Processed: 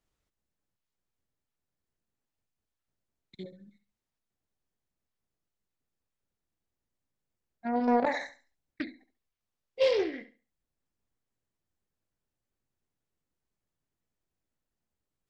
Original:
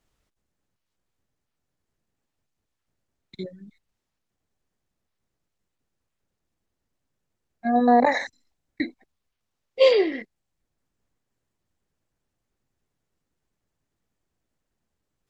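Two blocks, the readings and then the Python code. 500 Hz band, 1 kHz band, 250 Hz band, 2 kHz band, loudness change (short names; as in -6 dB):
-8.0 dB, -10.0 dB, -8.0 dB, -8.5 dB, -8.5 dB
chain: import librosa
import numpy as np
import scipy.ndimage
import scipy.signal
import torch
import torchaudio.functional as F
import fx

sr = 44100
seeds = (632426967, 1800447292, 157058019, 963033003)

y = fx.room_flutter(x, sr, wall_m=11.8, rt60_s=0.34)
y = fx.doppler_dist(y, sr, depth_ms=0.3)
y = F.gain(torch.from_numpy(y), -8.5).numpy()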